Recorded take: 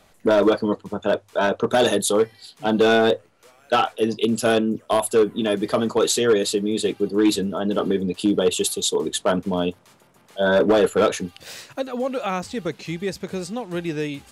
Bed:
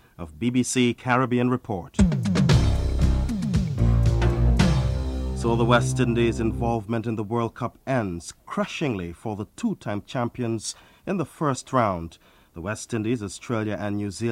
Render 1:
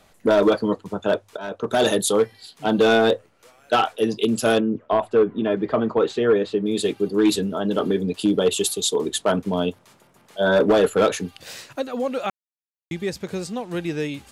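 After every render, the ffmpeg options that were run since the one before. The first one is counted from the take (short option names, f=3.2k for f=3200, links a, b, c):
-filter_complex "[0:a]asettb=1/sr,asplit=3[a][b][c];[a]atrim=end=4.604[d];[b]atrim=start=4.6:end=6.66,asetpts=PTS-STARTPTS,afade=t=in:d=0.004:c=qsin,afade=t=out:st=2.056:d=0.004:c=qsin,lowpass=2k[e];[c]atrim=start=6.656[f];[d][e]acrossfade=d=0.004:c1=hsin:c2=qsin[g];[g][f]acrossfade=d=0.004:c1=qsin:c2=hsin,asplit=4[h][i][j][k];[h]atrim=end=1.37,asetpts=PTS-STARTPTS,afade=t=out:st=1.366:d=0.004:c=hsin:silence=0.125893[l];[i]atrim=start=1.37:end=12.3,asetpts=PTS-STARTPTS,afade=t=in:d=0.51:silence=0.125893,afade=t=out:st=10.926:d=0.004:c=hsin[m];[j]atrim=start=12.3:end=12.91,asetpts=PTS-STARTPTS,volume=0[n];[k]atrim=start=12.91,asetpts=PTS-STARTPTS,afade=t=in:d=0.004:c=hsin[o];[l][m][n][o]concat=n=4:v=0:a=1"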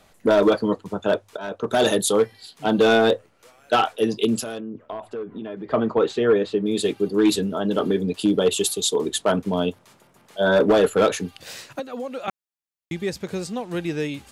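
-filter_complex "[0:a]asettb=1/sr,asplit=3[a][b][c];[a]atrim=end=4.434[d];[b]atrim=start=4.43:end=5.71,asetpts=PTS-STARTPTS,afade=t=in:d=0.004:c=qsin,afade=t=out:st=1.276:d=0.004:c=qsin,acompressor=threshold=-31dB:ratio=4:attack=3.2:release=140:knee=1:detection=peak[e];[c]atrim=start=5.706[f];[d][e]acrossfade=d=0.004:c1=hsin:c2=qsin[g];[g][f]acrossfade=d=0.004:c1=qsin:c2=hsin,asettb=1/sr,asplit=3[h][i][j];[h]atrim=end=11.794[k];[i]atrim=start=11.79:end=12.28,asetpts=PTS-STARTPTS,afade=t=in:d=0.004:c=qsin,afade=t=out:st=0.486:d=0.004:c=qsin,acrossover=split=200|5100[l][m][n];[l]acompressor=threshold=-50dB:ratio=4[o];[m]acompressor=threshold=-29dB:ratio=4[p];[n]acompressor=threshold=-59dB:ratio=4[q];[o][p][q]amix=inputs=3:normalize=0[r];[j]atrim=start=12.276[s];[k][r]acrossfade=d=0.004:c1=hsin:c2=qsin[t];[t][s]acrossfade=d=0.004:c1=qsin:c2=hsin"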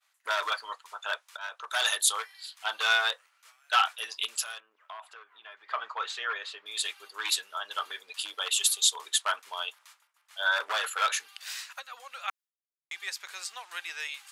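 -af "agate=range=-33dB:threshold=-47dB:ratio=3:detection=peak,highpass=f=1.1k:w=0.5412,highpass=f=1.1k:w=1.3066"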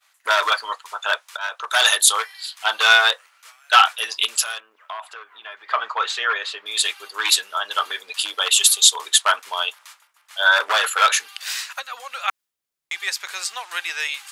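-af "volume=11dB,alimiter=limit=-1dB:level=0:latency=1"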